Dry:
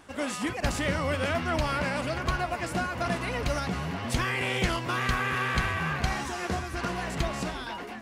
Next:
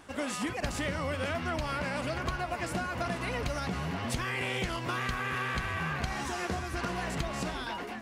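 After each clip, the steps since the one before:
downward compressor, threshold −29 dBFS, peak gain reduction 8.5 dB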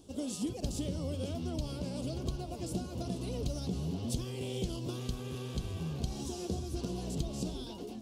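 drawn EQ curve 410 Hz 0 dB, 1,900 Hz −30 dB, 3,200 Hz −6 dB, 5,400 Hz −2 dB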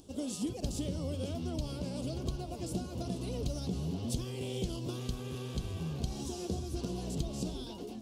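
upward compression, threshold −56 dBFS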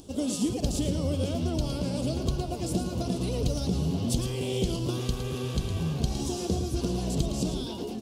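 single-tap delay 111 ms −9 dB
level +7.5 dB

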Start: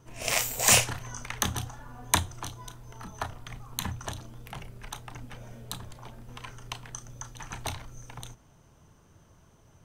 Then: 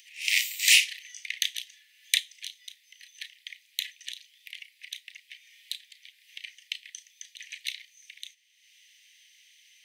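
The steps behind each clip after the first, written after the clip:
Butterworth high-pass 1,900 Hz 96 dB per octave
high shelf with overshoot 5,100 Hz −7 dB, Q 1.5
upward compression, threshold −53 dBFS
level +5 dB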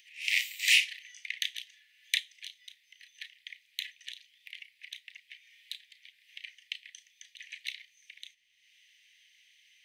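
bass and treble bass +14 dB, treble −9 dB
level −1.5 dB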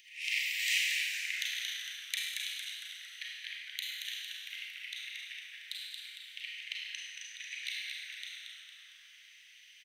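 downward compressor 2.5 to 1, threshold −37 dBFS, peak gain reduction 12.5 dB
on a send: echo with shifted repeats 228 ms, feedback 51%, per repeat −110 Hz, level −5 dB
on the sum: four-comb reverb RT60 1.4 s, combs from 33 ms, DRR −2.5 dB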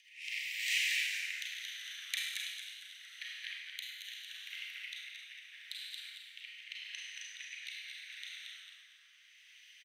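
rotating-speaker cabinet horn 0.8 Hz
high-pass with resonance 950 Hz, resonance Q 2.1
single-tap delay 218 ms −10 dB
level −2 dB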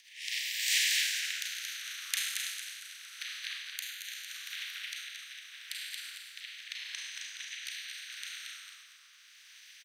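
ceiling on every frequency bin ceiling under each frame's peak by 16 dB
level +4.5 dB

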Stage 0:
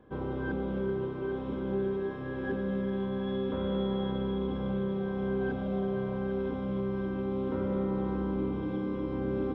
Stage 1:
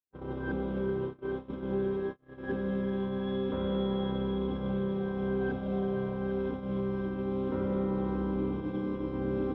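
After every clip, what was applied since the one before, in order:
noise gate −33 dBFS, range −51 dB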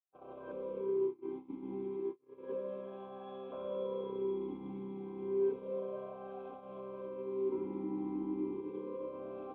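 formant filter swept between two vowels a-u 0.31 Hz
level +3.5 dB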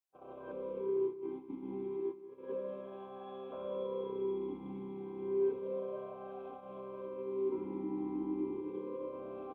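slap from a distant wall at 32 metres, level −14 dB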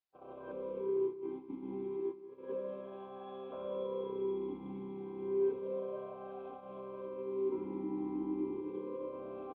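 downsampling to 11,025 Hz

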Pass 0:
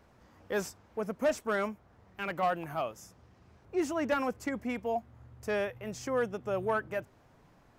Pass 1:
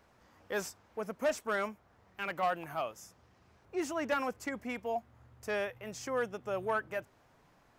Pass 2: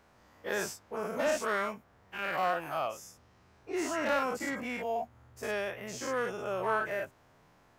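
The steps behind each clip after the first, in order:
low-shelf EQ 480 Hz −7 dB
every bin's largest magnitude spread in time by 120 ms; level −2.5 dB

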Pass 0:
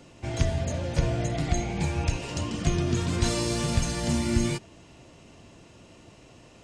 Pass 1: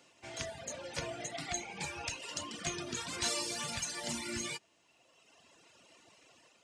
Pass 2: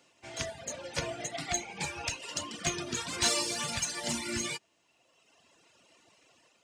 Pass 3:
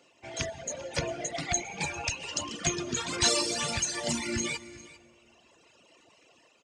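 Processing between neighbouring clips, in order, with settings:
reverb reduction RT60 1.8 s; high-pass filter 1,100 Hz 6 dB per octave; automatic gain control gain up to 5 dB; level −5.5 dB
in parallel at −10 dB: soft clipping −36.5 dBFS, distortion −10 dB; on the sum: expander for the loud parts 1.5 to 1, over −50 dBFS; level +6 dB
spectral envelope exaggerated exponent 1.5; single-tap delay 399 ms −18.5 dB; dense smooth reverb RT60 2.6 s, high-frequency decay 0.55×, pre-delay 110 ms, DRR 18.5 dB; level +3 dB

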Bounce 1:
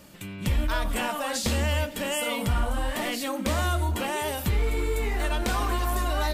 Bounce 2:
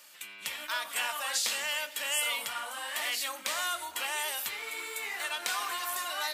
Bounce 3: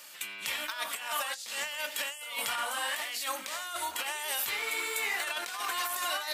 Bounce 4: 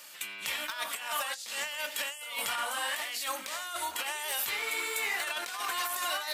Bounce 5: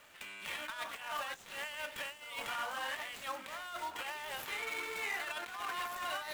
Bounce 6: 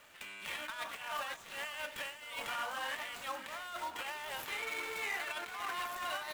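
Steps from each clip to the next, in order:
Bessel high-pass filter 1,600 Hz, order 2; level +1.5 dB
compressor whose output falls as the input rises −36 dBFS, ratio −0.5; level +2.5 dB
wavefolder on the positive side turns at −23 dBFS
running median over 9 samples; level −4 dB
single-tap delay 526 ms −13.5 dB

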